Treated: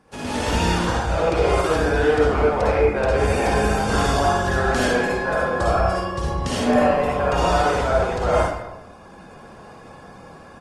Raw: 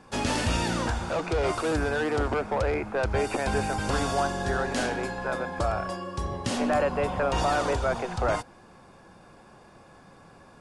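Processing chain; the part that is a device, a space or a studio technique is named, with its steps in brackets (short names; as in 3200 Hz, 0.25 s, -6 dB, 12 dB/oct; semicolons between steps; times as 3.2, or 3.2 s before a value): speakerphone in a meeting room (reverb RT60 0.90 s, pre-delay 49 ms, DRR -5 dB; speakerphone echo 0.2 s, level -18 dB; AGC gain up to 8 dB; gain -4.5 dB; Opus 24 kbps 48000 Hz)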